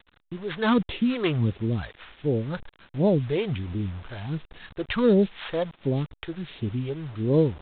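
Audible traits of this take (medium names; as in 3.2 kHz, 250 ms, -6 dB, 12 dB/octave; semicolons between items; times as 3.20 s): a buzz of ramps at a fixed pitch in blocks of 8 samples; phasing stages 2, 1.4 Hz, lowest notch 200–1300 Hz; a quantiser's noise floor 8-bit, dither none; A-law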